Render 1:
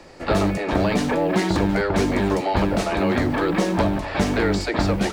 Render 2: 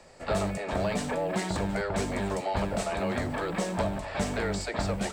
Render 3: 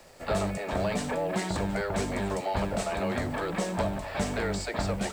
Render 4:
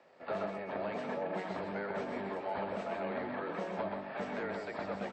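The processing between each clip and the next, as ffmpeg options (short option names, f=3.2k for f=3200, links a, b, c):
-af "equalizer=f=315:t=o:w=0.33:g=-11,equalizer=f=630:t=o:w=0.33:g=4,equalizer=f=8k:t=o:w=0.33:g=11,volume=-8.5dB"
-af "acrusher=bits=8:mix=0:aa=0.5"
-filter_complex "[0:a]highpass=240,lowpass=2.4k,asplit=2[a][b];[b]aecho=0:1:126|753:0.596|0.335[c];[a][c]amix=inputs=2:normalize=0,volume=-7.5dB" -ar 44100 -c:a wmav2 -b:a 64k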